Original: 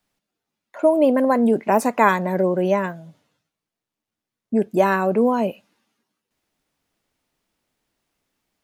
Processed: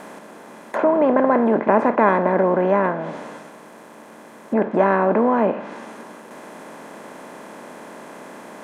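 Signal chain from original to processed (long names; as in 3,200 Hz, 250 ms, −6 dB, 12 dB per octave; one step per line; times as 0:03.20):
compressor on every frequency bin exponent 0.4
treble cut that deepens with the level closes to 1,900 Hz, closed at −13.5 dBFS
level −3.5 dB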